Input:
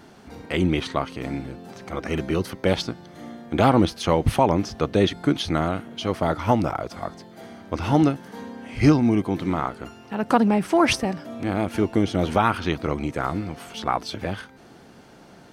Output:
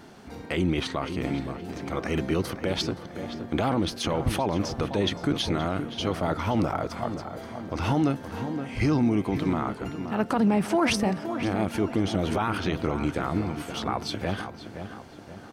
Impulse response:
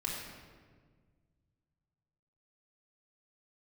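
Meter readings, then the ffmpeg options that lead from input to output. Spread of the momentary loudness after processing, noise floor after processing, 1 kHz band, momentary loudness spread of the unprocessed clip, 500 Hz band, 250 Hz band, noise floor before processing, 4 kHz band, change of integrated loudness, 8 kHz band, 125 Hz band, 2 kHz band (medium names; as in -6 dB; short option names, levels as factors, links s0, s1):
12 LU, -44 dBFS, -5.5 dB, 16 LU, -4.5 dB, -3.5 dB, -48 dBFS, -1.5 dB, -4.5 dB, -1.5 dB, -3.5 dB, -3.0 dB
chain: -filter_complex "[0:a]alimiter=limit=0.168:level=0:latency=1:release=27,asplit=2[s0][s1];[s1]adelay=522,lowpass=f=2300:p=1,volume=0.355,asplit=2[s2][s3];[s3]adelay=522,lowpass=f=2300:p=1,volume=0.49,asplit=2[s4][s5];[s5]adelay=522,lowpass=f=2300:p=1,volume=0.49,asplit=2[s6][s7];[s7]adelay=522,lowpass=f=2300:p=1,volume=0.49,asplit=2[s8][s9];[s9]adelay=522,lowpass=f=2300:p=1,volume=0.49,asplit=2[s10][s11];[s11]adelay=522,lowpass=f=2300:p=1,volume=0.49[s12];[s0][s2][s4][s6][s8][s10][s12]amix=inputs=7:normalize=0"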